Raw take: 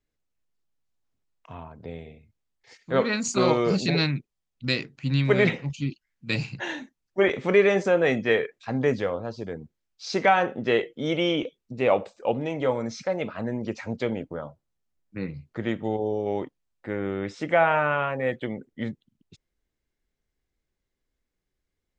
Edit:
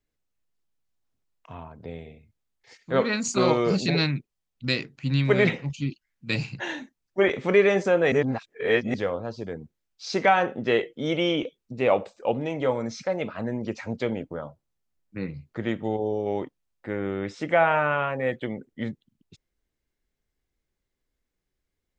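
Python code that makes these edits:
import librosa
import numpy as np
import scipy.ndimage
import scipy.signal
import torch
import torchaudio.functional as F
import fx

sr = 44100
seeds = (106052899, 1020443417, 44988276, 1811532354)

y = fx.edit(x, sr, fx.reverse_span(start_s=8.12, length_s=0.82), tone=tone)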